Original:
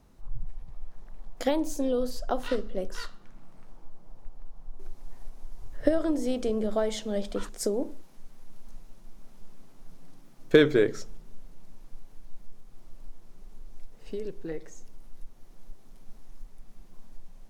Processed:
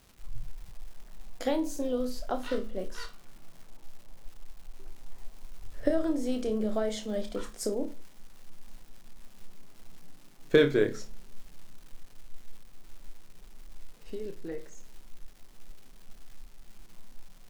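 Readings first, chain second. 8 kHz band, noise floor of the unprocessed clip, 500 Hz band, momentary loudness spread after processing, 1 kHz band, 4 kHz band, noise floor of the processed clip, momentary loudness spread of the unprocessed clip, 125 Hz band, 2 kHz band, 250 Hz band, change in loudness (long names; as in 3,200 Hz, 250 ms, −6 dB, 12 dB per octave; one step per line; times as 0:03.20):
−2.5 dB, −50 dBFS, −2.5 dB, 19 LU, −3.0 dB, −2.5 dB, −52 dBFS, 20 LU, −2.5 dB, −2.5 dB, −2.5 dB, −2.5 dB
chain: flutter between parallel walls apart 4.8 metres, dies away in 0.21 s
surface crackle 460 per second −43 dBFS
level −3.5 dB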